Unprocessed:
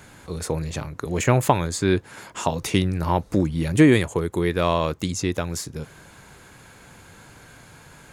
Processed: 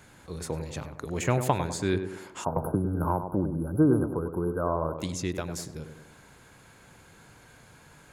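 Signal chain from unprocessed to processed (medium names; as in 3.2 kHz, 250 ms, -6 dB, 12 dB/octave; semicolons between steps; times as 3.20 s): tape echo 99 ms, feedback 54%, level -6 dB, low-pass 1.2 kHz; 2.44–4.99 s: spectral selection erased 1.6–9.9 kHz; 2.56–3.23 s: three bands compressed up and down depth 100%; trim -7 dB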